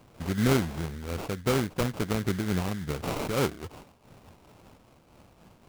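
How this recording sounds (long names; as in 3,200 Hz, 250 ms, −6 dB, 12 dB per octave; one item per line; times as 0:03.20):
aliases and images of a low sample rate 1,800 Hz, jitter 20%
amplitude modulation by smooth noise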